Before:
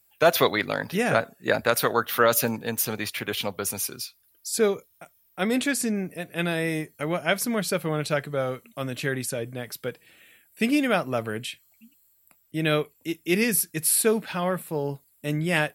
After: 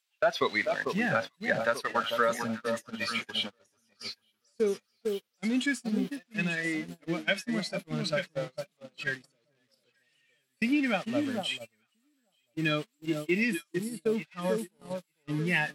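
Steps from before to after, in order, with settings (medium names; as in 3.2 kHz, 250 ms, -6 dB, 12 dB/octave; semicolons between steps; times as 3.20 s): zero-crossing glitches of -14 dBFS; spectral noise reduction 11 dB; high-pass 150 Hz 12 dB/octave; compression 3:1, threshold -22 dBFS, peak gain reduction 7 dB; Chebyshev low-pass 3.3 kHz, order 2; on a send: echo whose repeats swap between lows and highs 445 ms, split 1.1 kHz, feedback 58%, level -4 dB; on the sum: gate -32 dBFS, range -32 dB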